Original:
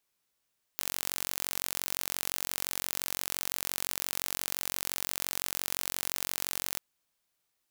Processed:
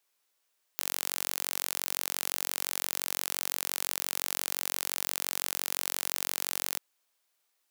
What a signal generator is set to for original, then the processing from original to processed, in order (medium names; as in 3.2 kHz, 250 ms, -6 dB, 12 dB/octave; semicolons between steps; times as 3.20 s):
pulse train 45.8 per s, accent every 0, -5.5 dBFS 5.99 s
high-pass 380 Hz 12 dB/octave; in parallel at -7 dB: saturation -14 dBFS